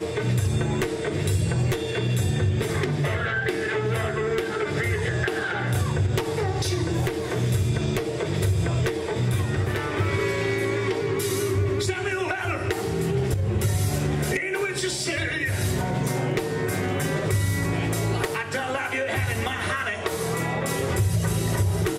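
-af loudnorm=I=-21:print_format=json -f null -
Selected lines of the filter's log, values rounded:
"input_i" : "-25.2",
"input_tp" : "-9.4",
"input_lra" : "0.7",
"input_thresh" : "-35.2",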